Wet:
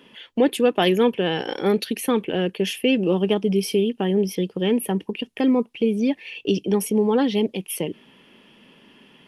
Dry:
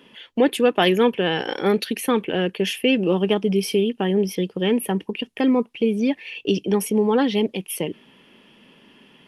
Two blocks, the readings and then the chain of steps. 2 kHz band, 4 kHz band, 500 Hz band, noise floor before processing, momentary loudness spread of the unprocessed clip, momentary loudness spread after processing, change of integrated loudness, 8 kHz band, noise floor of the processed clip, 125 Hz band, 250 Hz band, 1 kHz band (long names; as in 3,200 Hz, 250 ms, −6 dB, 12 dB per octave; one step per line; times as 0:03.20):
−3.0 dB, −2.0 dB, −0.5 dB, −54 dBFS, 8 LU, 8 LU, −0.5 dB, 0.0 dB, −55 dBFS, 0.0 dB, 0.0 dB, −2.0 dB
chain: dynamic equaliser 1,600 Hz, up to −4 dB, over −36 dBFS, Q 0.72